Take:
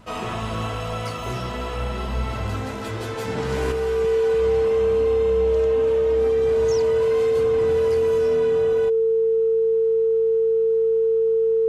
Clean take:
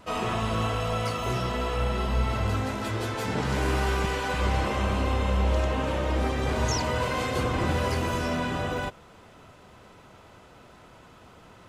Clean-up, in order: de-hum 55 Hz, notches 4; band-stop 450 Hz, Q 30; trim 0 dB, from 3.72 s +6 dB

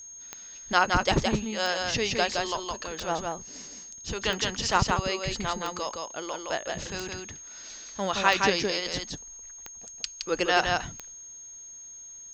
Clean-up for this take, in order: de-click; band-stop 6.5 kHz, Q 30; inverse comb 167 ms -3.5 dB

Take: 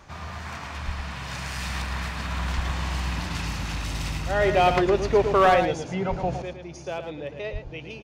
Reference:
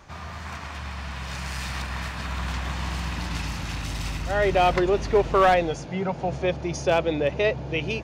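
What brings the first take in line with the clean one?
de-plosive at 0.85/2.55/6.09/7.52 s; inverse comb 111 ms -8 dB; trim 0 dB, from 6.42 s +11 dB

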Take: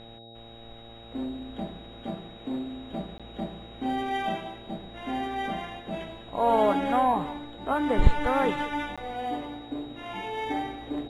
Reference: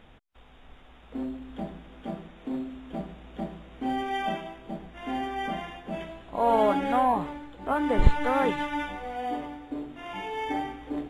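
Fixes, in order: de-hum 114.8 Hz, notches 7; band-stop 3.8 kHz, Q 30; interpolate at 3.18/8.96 s, 16 ms; inverse comb 192 ms -18 dB

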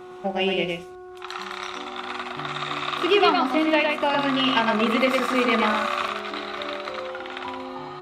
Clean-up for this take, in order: clip repair -7.5 dBFS; de-hum 365.3 Hz, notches 4; inverse comb 111 ms -3.5 dB

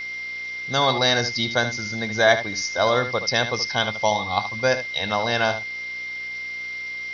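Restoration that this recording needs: de-hum 61.3 Hz, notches 9; band-stop 2.1 kHz, Q 30; noise print and reduce 30 dB; inverse comb 75 ms -11 dB

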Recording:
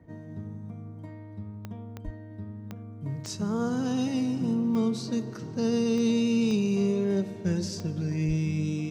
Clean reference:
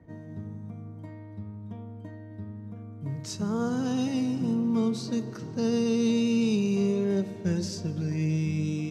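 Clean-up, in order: de-click; 2.04–2.16 s: high-pass 140 Hz 24 dB/octave; 8.27–8.39 s: high-pass 140 Hz 24 dB/octave

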